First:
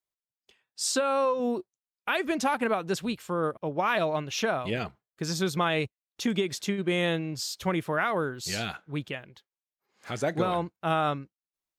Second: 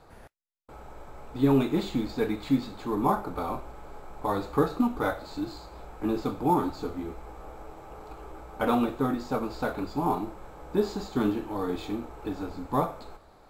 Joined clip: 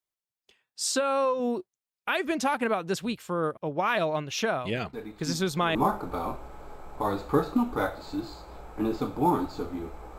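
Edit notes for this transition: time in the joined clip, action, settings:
first
4.93 s: add second from 2.17 s 0.82 s -11 dB
5.75 s: go over to second from 2.99 s

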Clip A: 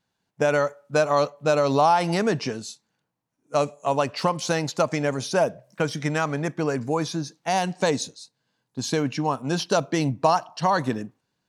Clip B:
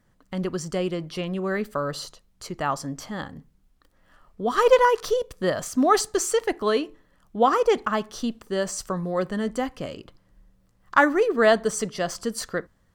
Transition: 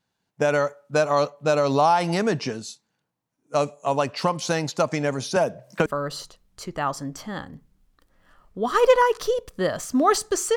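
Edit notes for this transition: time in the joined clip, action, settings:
clip A
5.36–5.86 s: three bands compressed up and down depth 100%
5.86 s: go over to clip B from 1.69 s

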